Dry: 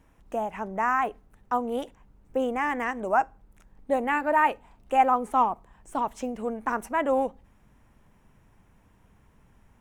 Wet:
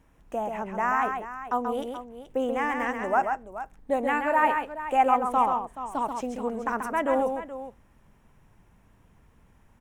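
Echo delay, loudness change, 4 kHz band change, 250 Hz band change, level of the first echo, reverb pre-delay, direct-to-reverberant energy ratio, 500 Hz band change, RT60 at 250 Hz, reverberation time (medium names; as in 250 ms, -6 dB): 134 ms, 0.0 dB, +0.5 dB, +0.5 dB, -5.5 dB, no reverb, no reverb, +0.5 dB, no reverb, no reverb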